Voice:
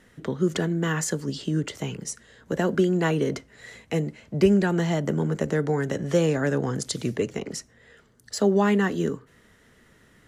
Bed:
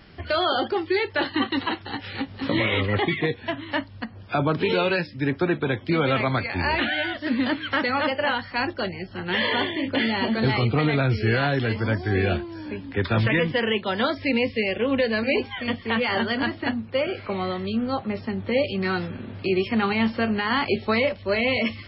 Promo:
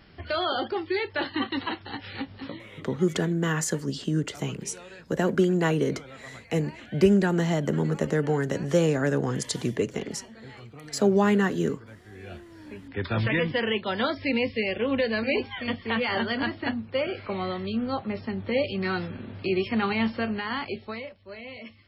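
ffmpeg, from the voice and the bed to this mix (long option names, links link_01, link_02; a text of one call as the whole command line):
ffmpeg -i stem1.wav -i stem2.wav -filter_complex "[0:a]adelay=2600,volume=-0.5dB[link_01];[1:a]volume=16dB,afade=type=out:start_time=2.32:duration=0.27:silence=0.112202,afade=type=in:start_time=12.18:duration=1.25:silence=0.0944061,afade=type=out:start_time=20:duration=1.1:silence=0.16788[link_02];[link_01][link_02]amix=inputs=2:normalize=0" out.wav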